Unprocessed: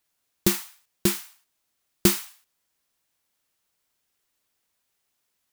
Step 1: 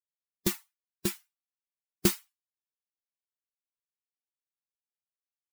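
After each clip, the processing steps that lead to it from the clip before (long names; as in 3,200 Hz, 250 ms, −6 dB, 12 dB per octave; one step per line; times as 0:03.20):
spectral dynamics exaggerated over time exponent 2
level −4 dB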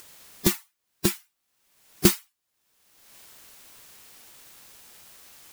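upward compression, threshold −26 dBFS
level +6.5 dB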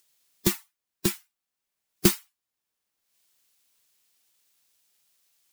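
multiband upward and downward expander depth 70%
level −8 dB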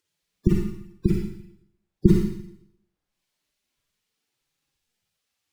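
gate on every frequency bin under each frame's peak −15 dB strong
RIAA equalisation playback
four-comb reverb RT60 0.75 s, DRR −1 dB
level −3 dB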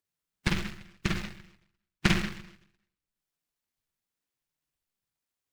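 short delay modulated by noise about 1,900 Hz, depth 0.49 ms
level −8.5 dB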